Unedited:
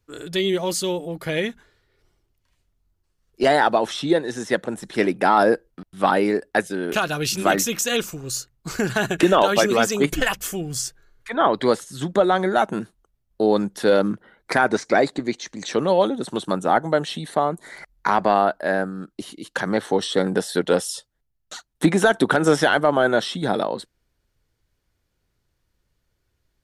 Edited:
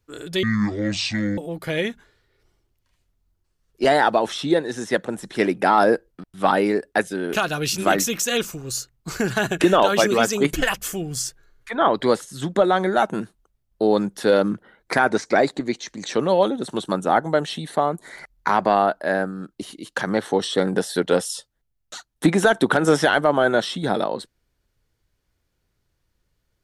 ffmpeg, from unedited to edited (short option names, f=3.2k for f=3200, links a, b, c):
-filter_complex "[0:a]asplit=3[a][b][c];[a]atrim=end=0.434[d];[b]atrim=start=0.43:end=0.97,asetpts=PTS-STARTPTS,asetrate=25137,aresample=44100[e];[c]atrim=start=0.966[f];[d][e]acrossfade=d=0.004:c1=hsin:c2=hsin[g];[g][f]acrossfade=d=0.004:c1=hsin:c2=hsin"